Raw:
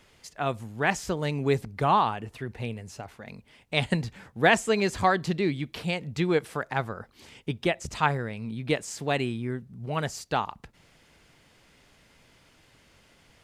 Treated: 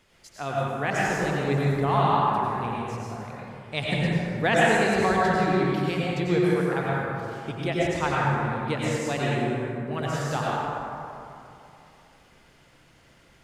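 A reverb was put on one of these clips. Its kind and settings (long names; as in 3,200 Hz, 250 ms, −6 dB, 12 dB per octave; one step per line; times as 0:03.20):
dense smooth reverb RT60 2.8 s, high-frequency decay 0.4×, pre-delay 80 ms, DRR −6 dB
level −4.5 dB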